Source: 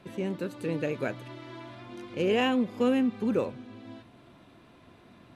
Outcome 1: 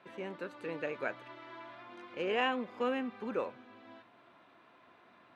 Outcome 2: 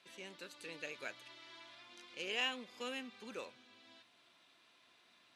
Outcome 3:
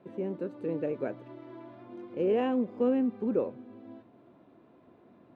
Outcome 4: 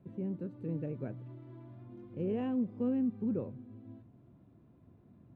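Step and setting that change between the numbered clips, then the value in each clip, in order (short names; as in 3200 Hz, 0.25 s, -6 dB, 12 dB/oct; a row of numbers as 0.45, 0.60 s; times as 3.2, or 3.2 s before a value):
band-pass, frequency: 1300, 5000, 410, 110 Hz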